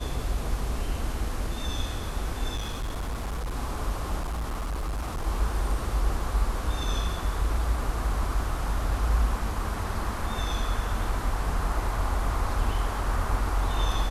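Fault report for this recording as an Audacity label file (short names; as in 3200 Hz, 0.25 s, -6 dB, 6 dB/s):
2.550000	3.560000	clipped -27.5 dBFS
4.190000	5.270000	clipped -27 dBFS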